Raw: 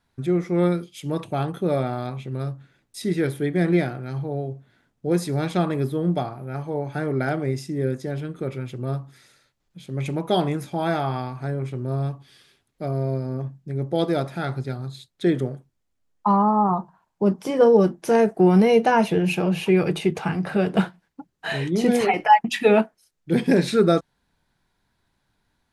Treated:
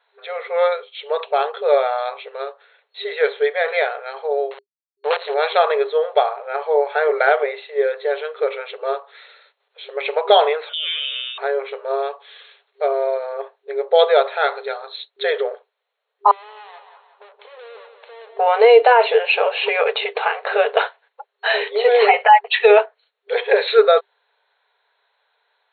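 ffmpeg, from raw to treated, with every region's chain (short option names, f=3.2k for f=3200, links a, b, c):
-filter_complex "[0:a]asettb=1/sr,asplit=3[a][b][c];[a]atrim=end=4.514[d];[b]atrim=start=4.51:end=5.34,asetpts=PTS-STARTPTS,afade=t=in:d=0.004:c=qsin,afade=t=out:st=0.826:d=0.004:c=qsin,acrusher=bits=4:dc=4:mix=0:aa=0.000001,acompressor=threshold=-20dB:ratio=4:attack=3.2:release=140:knee=1:detection=peak[e];[c]atrim=start=5.336[f];[d][e]acrossfade=d=0.004:c1=hsin:c2=qsin[g];[g][f]acrossfade=d=0.004:c1=qsin:c2=hsin,asettb=1/sr,asplit=3[h][i][j];[h]atrim=end=10.694[k];[i]atrim=start=10.69:end=11.38,asetpts=PTS-STARTPTS,afade=t=in:d=0.004:c=qsin,afade=t=out:st=0.686:d=0.004:c=qsin,highpass=210,lowpass=f=3.2k:t=q:w=0.5098,lowpass=f=3.2k:t=q:w=0.6013,lowpass=f=3.2k:t=q:w=0.9,lowpass=f=3.2k:t=q:w=2.563,afreqshift=-3800,acompressor=threshold=-44dB:ratio=2:attack=3.2:release=140:knee=1:detection=peak[l];[j]atrim=start=11.376[m];[k][l]acrossfade=d=0.004:c1=hsin:c2=qsin[n];[n][m]acrossfade=d=0.004:c1=qsin:c2=hsin,asettb=1/sr,asplit=3[o][p][q];[o]atrim=end=16.314[r];[p]atrim=start=16.31:end=18.39,asetpts=PTS-STARTPTS,afade=t=in:d=0.004:c=qsin,afade=t=out:st=2.076:d=0.004:c=qsin,aeval=exprs='(tanh(50.1*val(0)+0.45)-tanh(0.45))/50.1':c=same,acompressor=threshold=-48dB:ratio=12:attack=3.2:release=140:knee=1:detection=peak,aecho=1:1:178|356|534|712|890:0.398|0.179|0.0806|0.0363|0.0163,atrim=end_sample=91728[s];[q]atrim=start=18.386[t];[r][s]acrossfade=d=0.004:c1=hsin:c2=qsin[u];[u][t]acrossfade=d=0.004:c1=qsin:c2=hsin,afftfilt=real='re*between(b*sr/4096,400,4300)':imag='im*between(b*sr/4096,400,4300)':win_size=4096:overlap=0.75,dynaudnorm=f=490:g=21:m=3dB,alimiter=level_in=10.5dB:limit=-1dB:release=50:level=0:latency=1,volume=-1dB"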